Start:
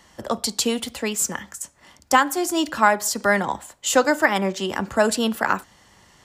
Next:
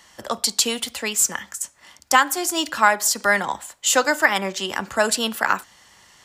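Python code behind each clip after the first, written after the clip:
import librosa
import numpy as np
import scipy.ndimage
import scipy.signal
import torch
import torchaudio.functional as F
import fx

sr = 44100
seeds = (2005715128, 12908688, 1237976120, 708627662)

y = fx.tilt_shelf(x, sr, db=-5.5, hz=750.0)
y = y * 10.0 ** (-1.0 / 20.0)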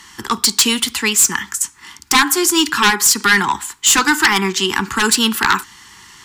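y = fx.fold_sine(x, sr, drive_db=11, ceiling_db=-1.0)
y = scipy.signal.sosfilt(scipy.signal.cheby1(2, 1.0, [380.0, 940.0], 'bandstop', fs=sr, output='sos'), y)
y = y * 10.0 ** (-4.0 / 20.0)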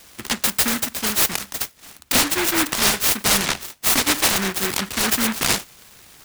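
y = fx.noise_mod_delay(x, sr, seeds[0], noise_hz=1500.0, depth_ms=0.4)
y = y * 10.0 ** (-5.0 / 20.0)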